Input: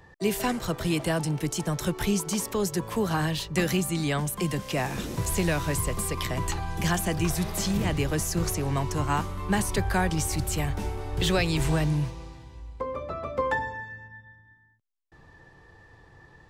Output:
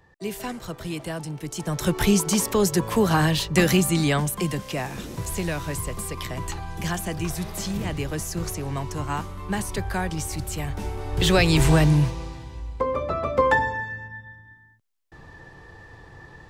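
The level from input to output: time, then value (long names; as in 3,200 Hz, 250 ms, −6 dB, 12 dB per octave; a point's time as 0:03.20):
0:01.43 −5 dB
0:01.96 +6.5 dB
0:03.98 +6.5 dB
0:04.91 −2 dB
0:10.59 −2 dB
0:11.53 +7.5 dB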